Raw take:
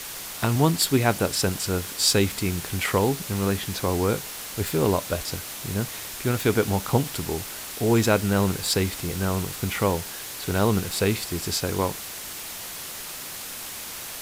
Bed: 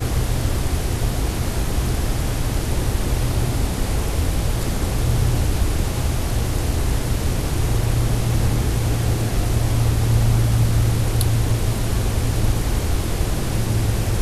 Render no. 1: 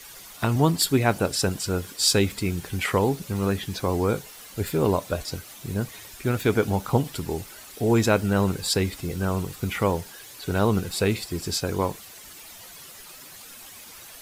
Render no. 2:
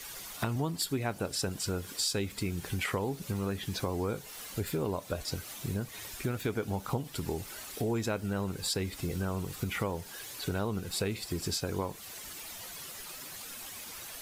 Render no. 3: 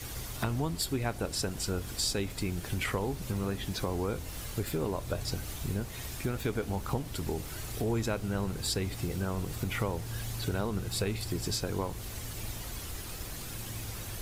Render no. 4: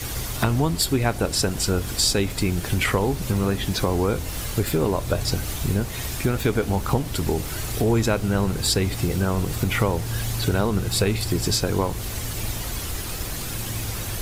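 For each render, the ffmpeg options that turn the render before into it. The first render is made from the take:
ffmpeg -i in.wav -af "afftdn=noise_reduction=11:noise_floor=-36" out.wav
ffmpeg -i in.wav -af "acompressor=threshold=-31dB:ratio=4" out.wav
ffmpeg -i in.wav -i bed.wav -filter_complex "[1:a]volume=-21.5dB[link_01];[0:a][link_01]amix=inputs=2:normalize=0" out.wav
ffmpeg -i in.wav -af "volume=10.5dB" out.wav

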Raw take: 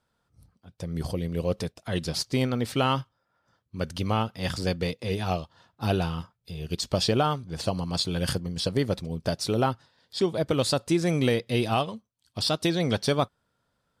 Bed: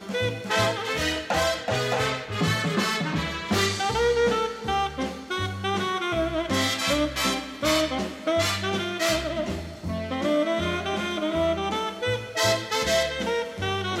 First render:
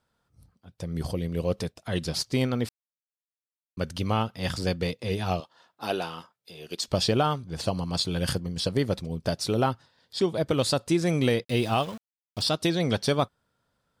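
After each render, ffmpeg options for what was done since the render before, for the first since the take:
ffmpeg -i in.wav -filter_complex "[0:a]asettb=1/sr,asplit=3[link_01][link_02][link_03];[link_01]atrim=end=5.404[link_04];[link_02]atrim=start=5.4:end=6.88,asetpts=PTS-STARTPTS,afade=type=in:duration=0.004:curve=qsin,afade=type=out:start_time=1.476:duration=0.004:curve=qsin,highpass=340[link_05];[link_03]atrim=start=6.876[link_06];[link_04][link_05]acrossfade=duration=0.004:curve1=hsin:curve2=qsin[link_07];[link_07][link_06]acrossfade=duration=0.004:curve1=qsin:curve2=hsin,asplit=3[link_08][link_09][link_10];[link_08]afade=type=out:start_time=11.43:duration=0.02[link_11];[link_09]aeval=exprs='val(0)*gte(abs(val(0)),0.00891)':channel_layout=same,afade=type=in:start_time=11.43:duration=0.02,afade=type=out:start_time=12.43:duration=0.02[link_12];[link_10]afade=type=in:start_time=12.43:duration=0.02[link_13];[link_11][link_12][link_13]amix=inputs=3:normalize=0,asplit=3[link_14][link_15][link_16];[link_14]atrim=end=2.69,asetpts=PTS-STARTPTS,afade=type=out:start_time=2.686:duration=0.004:curve=hsin[link_17];[link_15]atrim=start=2.69:end=3.77,asetpts=PTS-STARTPTS,volume=0[link_18];[link_16]atrim=start=3.77,asetpts=PTS-STARTPTS,afade=type=in:duration=0.004:curve=hsin[link_19];[link_17][link_18][link_19]concat=n=3:v=0:a=1" out.wav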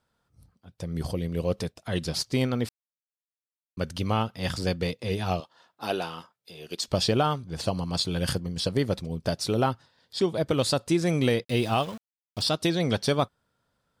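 ffmpeg -i in.wav -af anull out.wav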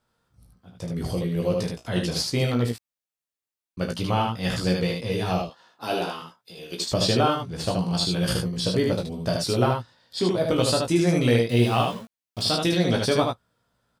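ffmpeg -i in.wav -filter_complex "[0:a]asplit=2[link_01][link_02];[link_02]adelay=17,volume=-4dB[link_03];[link_01][link_03]amix=inputs=2:normalize=0,aecho=1:1:33|76:0.335|0.668" out.wav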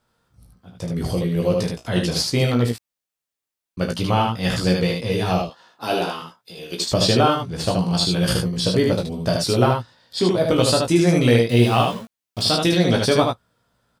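ffmpeg -i in.wav -af "volume=4.5dB" out.wav

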